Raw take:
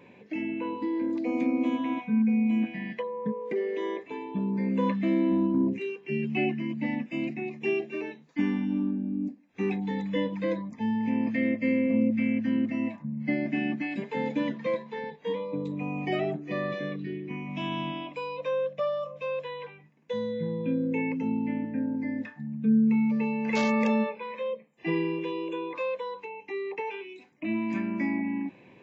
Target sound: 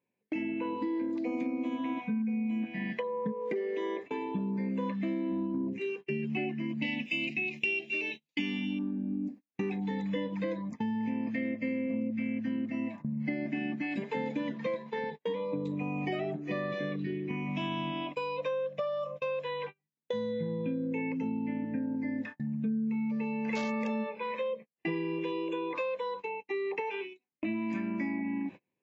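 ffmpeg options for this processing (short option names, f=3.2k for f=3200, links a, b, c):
-filter_complex "[0:a]agate=range=-36dB:threshold=-41dB:ratio=16:detection=peak,asettb=1/sr,asplit=3[a][b][c];[a]atrim=end=6.824[d];[b]atrim=start=6.82:end=8.79,asetpts=PTS-STARTPTS,afade=t=in:d=0.004:c=qsin,afade=t=out:st=1.966:d=0.004:c=qsin,highshelf=f=2k:t=q:w=3:g=11[e];[c]atrim=start=8.786[f];[d][e]acrossfade=d=0.004:c1=hsin:c2=qsin[g];[g][f]acrossfade=d=0.004:c1=qsin:c2=hsin,acompressor=threshold=-34dB:ratio=6,volume=3.5dB"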